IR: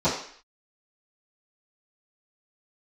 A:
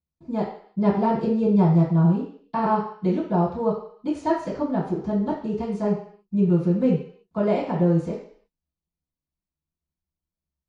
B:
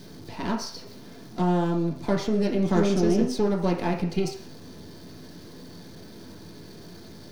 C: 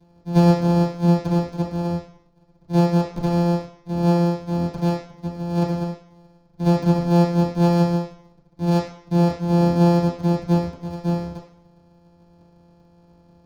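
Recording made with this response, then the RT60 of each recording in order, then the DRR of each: A; 0.55, 0.55, 0.55 s; -16.5, -1.0, -11.0 dB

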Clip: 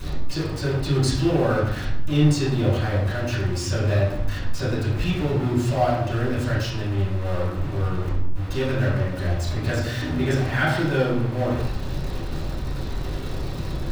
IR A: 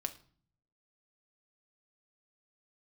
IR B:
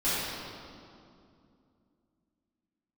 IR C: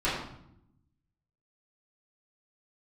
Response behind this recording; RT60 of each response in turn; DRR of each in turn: C; 0.45, 2.5, 0.75 s; 6.5, -15.0, -11.5 dB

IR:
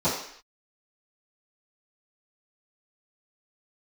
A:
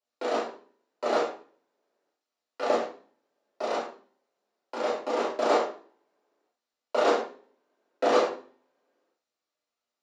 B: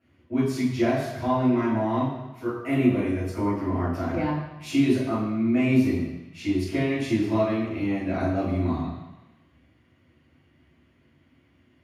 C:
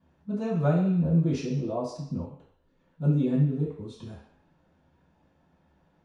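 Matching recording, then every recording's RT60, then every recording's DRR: C; 0.45 s, 1.1 s, not exponential; -7.5, -11.0, -16.5 dB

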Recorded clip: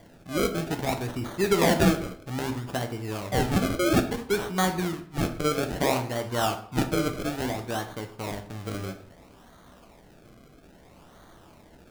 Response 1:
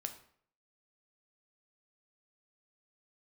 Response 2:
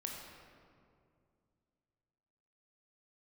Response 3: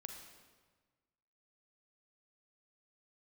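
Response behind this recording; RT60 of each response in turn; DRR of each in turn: 1; 0.60, 2.3, 1.4 s; 6.0, -0.5, 3.5 dB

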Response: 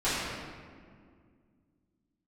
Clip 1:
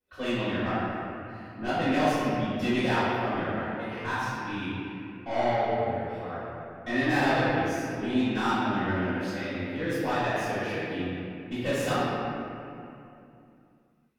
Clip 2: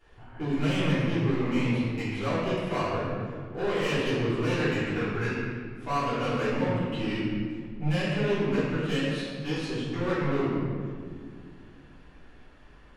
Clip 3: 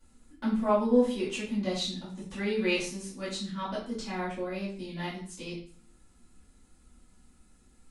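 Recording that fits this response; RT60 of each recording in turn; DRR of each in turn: 2; 2.7, 2.0, 0.45 s; -21.5, -15.5, -12.0 dB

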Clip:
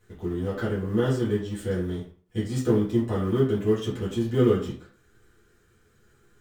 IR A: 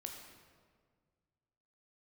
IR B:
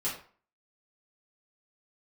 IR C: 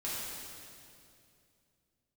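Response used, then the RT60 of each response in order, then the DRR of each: B; 1.8, 0.45, 2.5 s; 2.0, -9.5, -9.0 dB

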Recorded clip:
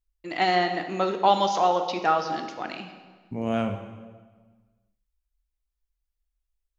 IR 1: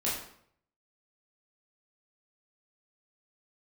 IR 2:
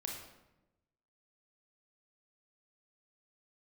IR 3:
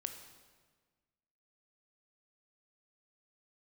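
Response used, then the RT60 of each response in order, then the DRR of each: 3; 0.65, 1.0, 1.5 s; -7.5, -0.5, 6.0 dB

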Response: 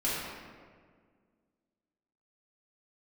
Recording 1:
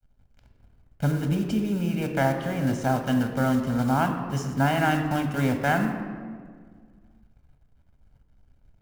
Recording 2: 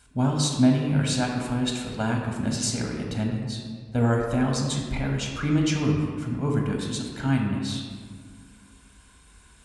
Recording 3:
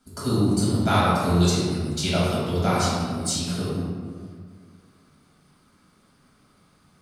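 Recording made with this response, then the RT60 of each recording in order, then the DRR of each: 3; 1.8, 1.8, 1.8 s; 5.0, 0.0, -9.0 dB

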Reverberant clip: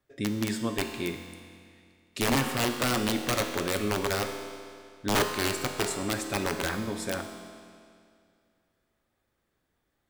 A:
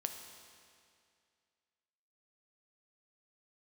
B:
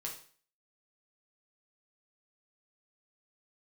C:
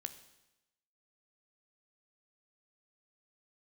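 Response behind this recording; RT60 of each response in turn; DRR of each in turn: A; 2.3, 0.45, 0.95 s; 5.0, -2.0, 9.5 dB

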